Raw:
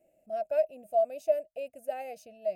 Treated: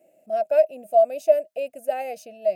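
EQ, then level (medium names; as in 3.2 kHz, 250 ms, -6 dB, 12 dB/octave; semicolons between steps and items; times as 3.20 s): high-pass 190 Hz 12 dB/octave; +9.0 dB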